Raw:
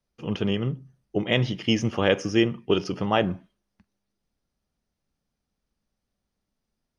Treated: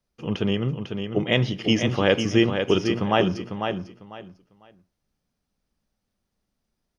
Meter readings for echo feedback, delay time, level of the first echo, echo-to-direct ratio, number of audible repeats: 22%, 499 ms, −6.5 dB, −6.5 dB, 3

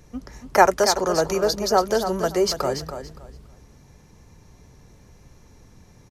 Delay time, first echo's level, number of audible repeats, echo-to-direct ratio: 284 ms, −9.0 dB, 2, −9.0 dB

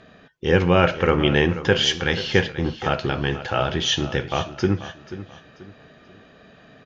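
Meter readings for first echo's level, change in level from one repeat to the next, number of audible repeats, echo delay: −14.0 dB, −9.5 dB, 3, 485 ms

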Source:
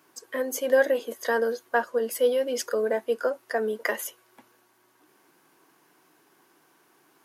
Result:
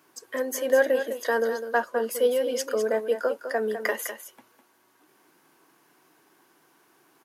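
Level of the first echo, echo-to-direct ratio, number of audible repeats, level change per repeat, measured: −9.5 dB, −9.5 dB, 1, repeats not evenly spaced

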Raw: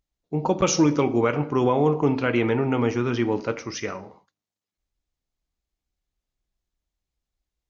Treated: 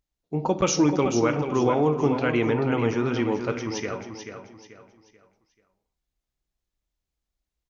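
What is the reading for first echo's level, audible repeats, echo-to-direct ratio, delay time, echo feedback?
−8.0 dB, 3, −7.5 dB, 436 ms, 34%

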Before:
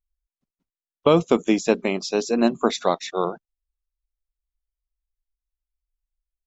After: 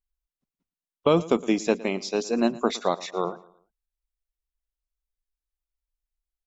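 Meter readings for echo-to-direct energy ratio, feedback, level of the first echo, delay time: −19.0 dB, 37%, −19.5 dB, 113 ms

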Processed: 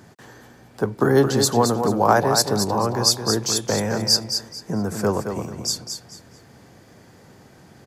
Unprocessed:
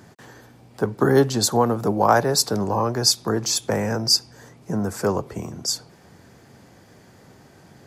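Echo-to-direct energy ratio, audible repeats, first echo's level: −6.5 dB, 3, −7.0 dB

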